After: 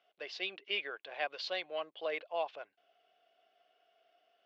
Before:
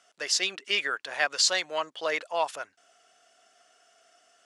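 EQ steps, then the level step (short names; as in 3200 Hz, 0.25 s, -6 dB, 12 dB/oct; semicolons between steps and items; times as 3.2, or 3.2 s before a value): air absorption 120 m; speaker cabinet 220–3700 Hz, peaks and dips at 250 Hz -9 dB, 1300 Hz -10 dB, 1800 Hz -8 dB; notch 940 Hz, Q 8.5; -5.0 dB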